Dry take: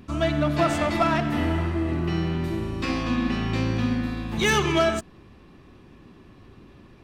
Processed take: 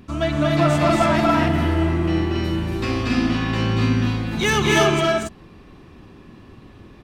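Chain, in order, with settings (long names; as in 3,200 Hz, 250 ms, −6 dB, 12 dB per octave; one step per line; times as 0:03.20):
loudspeakers that aren't time-aligned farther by 80 metres −2 dB, 96 metres −2 dB
level +1.5 dB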